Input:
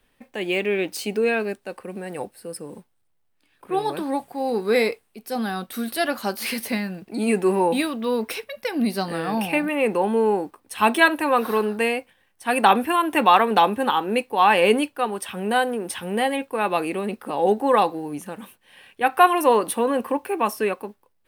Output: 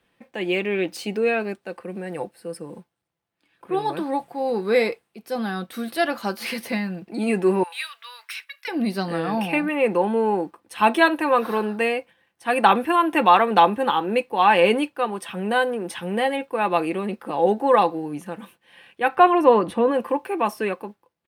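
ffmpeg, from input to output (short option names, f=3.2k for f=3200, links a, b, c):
-filter_complex "[0:a]asettb=1/sr,asplit=3[a][b][c];[a]atrim=end=7.634[d];[b]atrim=start=7.63:end=8.68,asetpts=PTS-STARTPTS,afade=t=in:d=0.004:c=qsin,afade=t=out:st=1.046:d=0.004:c=qsin,highpass=f=1.4k:w=0.5412,highpass=f=1.4k:w=1.3066[e];[c]atrim=start=8.676[f];[d][e]acrossfade=d=0.004:c1=hsin:c2=qsin[g];[g][f]acrossfade=d=0.004:c1=qsin:c2=hsin,asplit=3[h][i][j];[h]afade=t=out:st=19.15:d=0.02[k];[i]aemphasis=mode=reproduction:type=bsi,afade=t=in:st=19.15:d=0.02,afade=t=out:st=19.9:d=0.02[l];[j]afade=t=in:st=19.9:d=0.02[m];[k][l][m]amix=inputs=3:normalize=0,highpass=73,highshelf=f=6.7k:g=-10.5,aecho=1:1:5.9:0.35"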